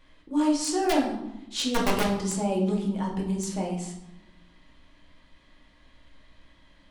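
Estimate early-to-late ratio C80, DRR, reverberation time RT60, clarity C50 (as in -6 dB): 8.5 dB, -3.5 dB, 0.95 s, 5.5 dB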